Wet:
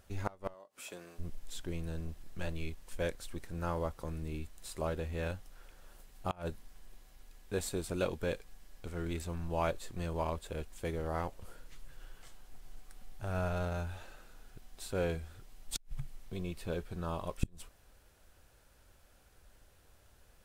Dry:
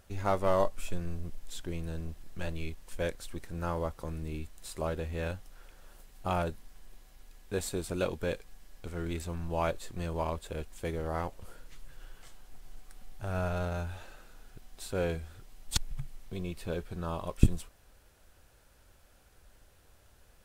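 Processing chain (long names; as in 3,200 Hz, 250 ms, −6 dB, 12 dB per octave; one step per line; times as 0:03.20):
0:00.53–0:01.18: high-pass filter 200 Hz → 570 Hz 12 dB per octave
gate with flip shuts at −18 dBFS, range −26 dB
level −2 dB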